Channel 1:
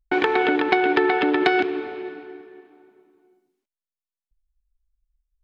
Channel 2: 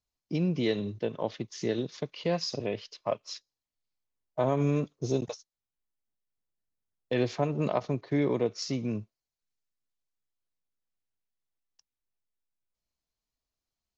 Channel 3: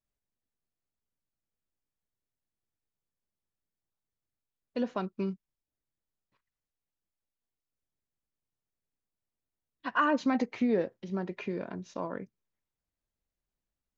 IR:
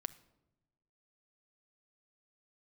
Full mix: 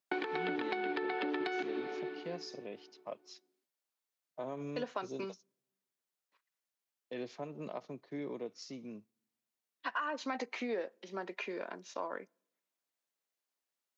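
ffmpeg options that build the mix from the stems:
-filter_complex "[0:a]equalizer=f=4.4k:t=o:w=0.4:g=6,alimiter=limit=-8dB:level=0:latency=1:release=347,volume=-7.5dB[a];[1:a]volume=-14dB,asplit=2[b][c];[c]volume=-19dB[d];[2:a]highpass=310,lowshelf=f=410:g=-11.5,alimiter=limit=-22.5dB:level=0:latency=1:release=398,volume=2dB,asplit=2[e][f];[f]volume=-17.5dB[g];[3:a]atrim=start_sample=2205[h];[d][g]amix=inputs=2:normalize=0[i];[i][h]afir=irnorm=-1:irlink=0[j];[a][b][e][j]amix=inputs=4:normalize=0,highpass=f=170:w=0.5412,highpass=f=170:w=1.3066,acompressor=threshold=-33dB:ratio=5"

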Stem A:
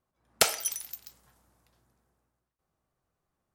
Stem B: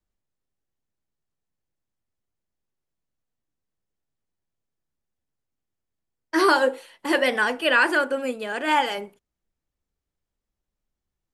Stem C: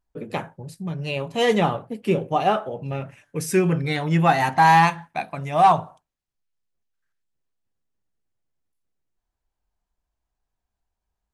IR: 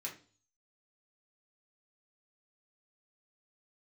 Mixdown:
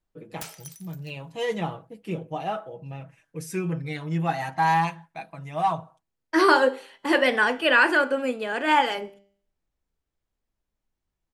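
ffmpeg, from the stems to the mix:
-filter_complex "[0:a]aeval=exprs='(mod(5.62*val(0)+1,2)-1)/5.62':c=same,volume=-13.5dB,asplit=2[a][b];[b]volume=-10.5dB[c];[1:a]highshelf=f=7.3k:g=-9.5,bandreject=f=198.9:t=h:w=4,bandreject=f=397.8:t=h:w=4,bandreject=f=596.7:t=h:w=4,bandreject=f=795.6:t=h:w=4,bandreject=f=994.5:t=h:w=4,bandreject=f=1.1934k:t=h:w=4,bandreject=f=1.3923k:t=h:w=4,bandreject=f=1.5912k:t=h:w=4,bandreject=f=1.7901k:t=h:w=4,bandreject=f=1.989k:t=h:w=4,bandreject=f=2.1879k:t=h:w=4,bandreject=f=2.3868k:t=h:w=4,bandreject=f=2.5857k:t=h:w=4,bandreject=f=2.7846k:t=h:w=4,bandreject=f=2.9835k:t=h:w=4,bandreject=f=3.1824k:t=h:w=4,bandreject=f=3.3813k:t=h:w=4,bandreject=f=3.5802k:t=h:w=4,bandreject=f=3.7791k:t=h:w=4,bandreject=f=3.978k:t=h:w=4,bandreject=f=4.1769k:t=h:w=4,bandreject=f=4.3758k:t=h:w=4,bandreject=f=4.5747k:t=h:w=4,bandreject=f=4.7736k:t=h:w=4,bandreject=f=4.9725k:t=h:w=4,bandreject=f=5.1714k:t=h:w=4,bandreject=f=5.3703k:t=h:w=4,bandreject=f=5.5692k:t=h:w=4,bandreject=f=5.7681k:t=h:w=4,bandreject=f=5.967k:t=h:w=4,bandreject=f=6.1659k:t=h:w=4,bandreject=f=6.3648k:t=h:w=4,bandreject=f=6.5637k:t=h:w=4,bandreject=f=6.7626k:t=h:w=4,bandreject=f=6.9615k:t=h:w=4,bandreject=f=7.1604k:t=h:w=4,bandreject=f=7.3593k:t=h:w=4,bandreject=f=7.5582k:t=h:w=4,bandreject=f=7.7571k:t=h:w=4,volume=0.5dB,asplit=2[d][e];[e]volume=-15dB[f];[2:a]aecho=1:1:6.2:0.67,volume=-11dB[g];[3:a]atrim=start_sample=2205[h];[c][f]amix=inputs=2:normalize=0[i];[i][h]afir=irnorm=-1:irlink=0[j];[a][d][g][j]amix=inputs=4:normalize=0"

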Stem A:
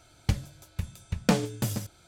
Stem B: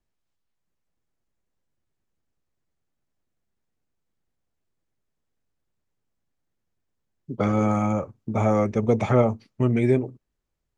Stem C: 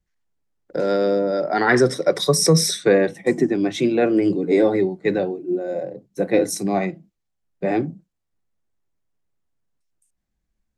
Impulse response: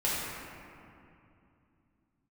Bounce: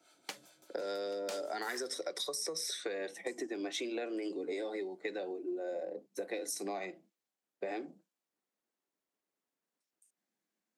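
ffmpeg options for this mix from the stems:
-filter_complex "[0:a]acrossover=split=500[a][b];[a]aeval=exprs='val(0)*(1-0.7/2+0.7/2*cos(2*PI*4.9*n/s))':c=same[c];[b]aeval=exprs='val(0)*(1-0.7/2-0.7/2*cos(2*PI*4.9*n/s))':c=same[d];[c][d]amix=inputs=2:normalize=0,volume=-4dB[e];[2:a]volume=-2.5dB[f];[e][f]amix=inputs=2:normalize=0,acrossover=split=360|3100[g][h][i];[g]acompressor=threshold=-48dB:ratio=4[j];[h]acompressor=threshold=-33dB:ratio=4[k];[i]acompressor=threshold=-31dB:ratio=4[l];[j][k][l]amix=inputs=3:normalize=0,highpass=f=240:w=0.5412,highpass=f=240:w=1.3066,acompressor=threshold=-35dB:ratio=6"

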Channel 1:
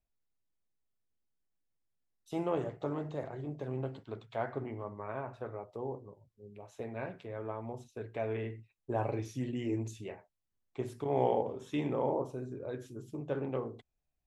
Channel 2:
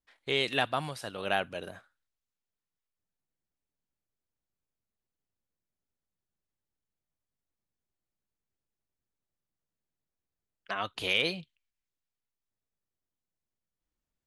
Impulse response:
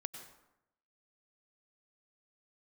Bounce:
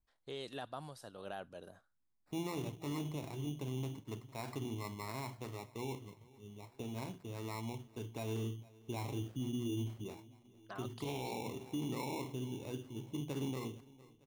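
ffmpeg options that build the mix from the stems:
-filter_complex "[0:a]firequalizer=gain_entry='entry(300,0);entry(540,-13);entry(1000,2);entry(1500,-13)':delay=0.05:min_phase=1,acrusher=samples=14:mix=1:aa=0.000001,volume=1.5dB,asplit=2[a][b];[b]volume=-23.5dB[c];[1:a]equalizer=f=2.3k:t=o:w=0.92:g=-13,volume=-10.5dB[d];[c]aecho=0:1:455|910|1365|1820|2275|2730|3185|3640:1|0.52|0.27|0.141|0.0731|0.038|0.0198|0.0103[e];[a][d][e]amix=inputs=3:normalize=0,alimiter=level_in=7.5dB:limit=-24dB:level=0:latency=1:release=54,volume=-7.5dB"

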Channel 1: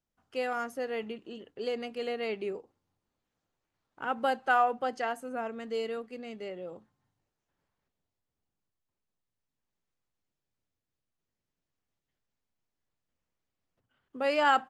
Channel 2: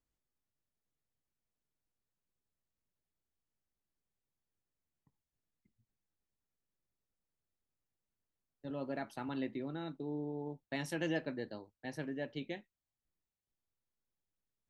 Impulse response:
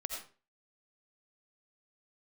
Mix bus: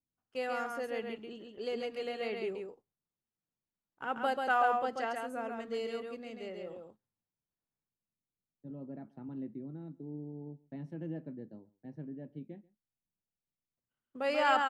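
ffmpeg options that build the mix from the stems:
-filter_complex "[0:a]agate=range=-15dB:threshold=-49dB:ratio=16:detection=peak,volume=-4.5dB,asplit=3[a][b][c];[b]volume=-21dB[d];[c]volume=-3.5dB[e];[1:a]bandpass=f=180:t=q:w=1.3:csg=0,volume=1.5dB,asplit=2[f][g];[g]volume=-23.5dB[h];[2:a]atrim=start_sample=2205[i];[d][i]afir=irnorm=-1:irlink=0[j];[e][h]amix=inputs=2:normalize=0,aecho=0:1:137:1[k];[a][f][j][k]amix=inputs=4:normalize=0"

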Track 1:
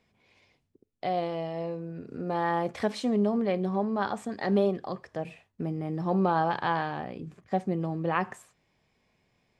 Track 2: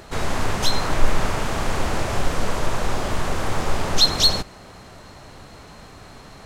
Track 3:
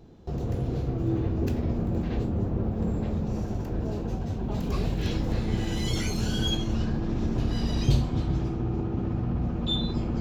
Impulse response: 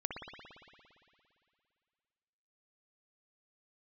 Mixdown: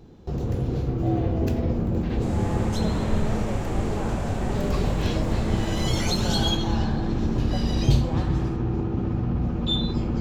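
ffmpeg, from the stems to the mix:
-filter_complex "[0:a]volume=-3dB,asplit=2[a][b];[b]volume=-9.5dB[c];[1:a]equalizer=f=7.4k:t=o:w=0.34:g=7,adelay=2100,volume=-9dB,asplit=2[d][e];[e]volume=-4dB[f];[2:a]bandreject=f=670:w=12,volume=3dB[g];[a][d]amix=inputs=2:normalize=0,asuperpass=centerf=620:order=4:qfactor=1.1,acompressor=threshold=-37dB:ratio=6,volume=0dB[h];[3:a]atrim=start_sample=2205[i];[c][f]amix=inputs=2:normalize=0[j];[j][i]afir=irnorm=-1:irlink=0[k];[g][h][k]amix=inputs=3:normalize=0"

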